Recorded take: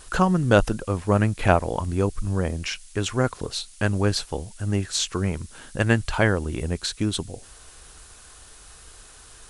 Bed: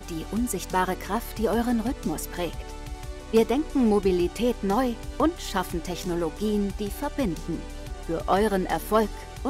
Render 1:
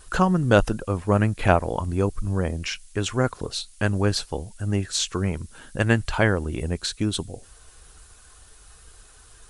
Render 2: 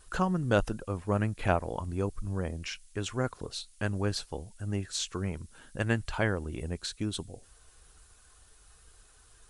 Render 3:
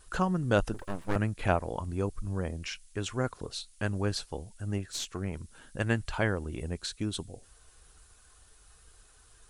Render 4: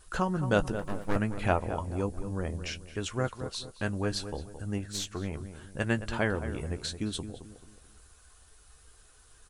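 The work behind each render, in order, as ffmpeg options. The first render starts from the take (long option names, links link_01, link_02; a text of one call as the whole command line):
ffmpeg -i in.wav -af "afftdn=noise_reduction=6:noise_floor=-48" out.wav
ffmpeg -i in.wav -af "volume=-8.5dB" out.wav
ffmpeg -i in.wav -filter_complex "[0:a]asettb=1/sr,asplit=3[link_01][link_02][link_03];[link_01]atrim=end=0.744[link_04];[link_02]atrim=start=0.74:end=1.16,asetpts=PTS-STARTPTS,afade=type=in:duration=0.004:curve=qsin,afade=type=out:start_time=0.416:duration=0.004:curve=qsin,aeval=exprs='abs(val(0))':channel_layout=same[link_05];[link_03]atrim=start=1.156[link_06];[link_04][link_05]acrossfade=duration=0.004:curve1=hsin:curve2=qsin[link_07];[link_07][link_06]acrossfade=duration=0.004:curve1=qsin:curve2=hsin,asettb=1/sr,asplit=3[link_08][link_09][link_10];[link_08]atrim=end=4.784[link_11];[link_09]atrim=start=4.78:end=5.33,asetpts=PTS-STARTPTS,afade=type=in:duration=0.004:curve=qsin,afade=type=out:start_time=0.546:duration=0.004:curve=qsin,aeval=exprs='(tanh(12.6*val(0)+0.55)-tanh(0.55))/12.6':channel_layout=same[link_12];[link_10]atrim=start=5.326[link_13];[link_11][link_12]acrossfade=duration=0.004:curve1=hsin:curve2=qsin[link_14];[link_14][link_13]acrossfade=duration=0.004:curve1=qsin:curve2=hsin" out.wav
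ffmpeg -i in.wav -filter_complex "[0:a]asplit=2[link_01][link_02];[link_02]adelay=14,volume=-10.5dB[link_03];[link_01][link_03]amix=inputs=2:normalize=0,asplit=2[link_04][link_05];[link_05]adelay=218,lowpass=frequency=1600:poles=1,volume=-10dB,asplit=2[link_06][link_07];[link_07]adelay=218,lowpass=frequency=1600:poles=1,volume=0.38,asplit=2[link_08][link_09];[link_09]adelay=218,lowpass=frequency=1600:poles=1,volume=0.38,asplit=2[link_10][link_11];[link_11]adelay=218,lowpass=frequency=1600:poles=1,volume=0.38[link_12];[link_06][link_08][link_10][link_12]amix=inputs=4:normalize=0[link_13];[link_04][link_13]amix=inputs=2:normalize=0" out.wav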